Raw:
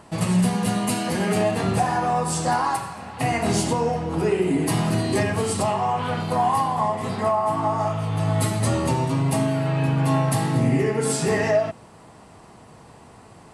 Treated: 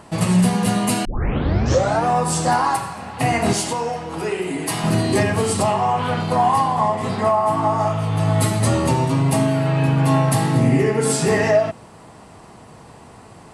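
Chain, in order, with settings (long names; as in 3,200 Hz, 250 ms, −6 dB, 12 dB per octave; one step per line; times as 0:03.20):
0:01.05: tape start 1.01 s
0:03.53–0:04.84: low-shelf EQ 480 Hz −11.5 dB
0:06.14–0:07.28: low-pass filter 10,000 Hz 12 dB per octave
level +4 dB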